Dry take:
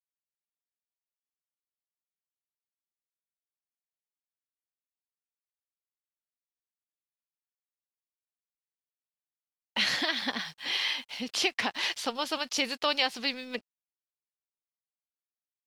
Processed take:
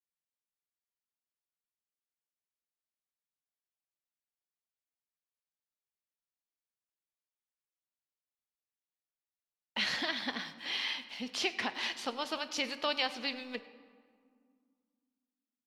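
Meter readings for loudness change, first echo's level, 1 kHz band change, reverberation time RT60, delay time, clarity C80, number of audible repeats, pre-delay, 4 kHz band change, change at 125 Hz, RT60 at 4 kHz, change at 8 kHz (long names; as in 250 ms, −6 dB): −5.0 dB, −22.5 dB, −4.5 dB, 2.0 s, 102 ms, 14.0 dB, 1, 5 ms, −5.5 dB, −4.0 dB, 1.2 s, −7.5 dB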